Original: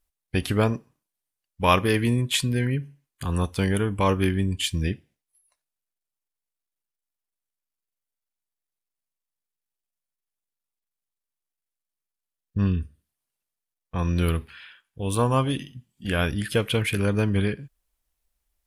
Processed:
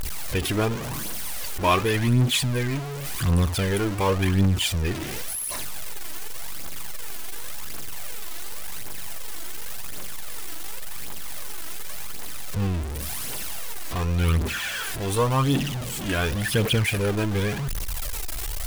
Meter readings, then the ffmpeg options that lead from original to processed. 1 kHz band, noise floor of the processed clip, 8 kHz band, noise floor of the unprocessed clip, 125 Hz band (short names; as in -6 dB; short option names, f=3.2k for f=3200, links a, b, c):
+0.5 dB, -31 dBFS, +8.0 dB, under -85 dBFS, +1.5 dB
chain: -af "aeval=exprs='val(0)+0.5*0.0841*sgn(val(0))':c=same,aphaser=in_gain=1:out_gain=1:delay=3.2:decay=0.5:speed=0.9:type=triangular,volume=-4dB"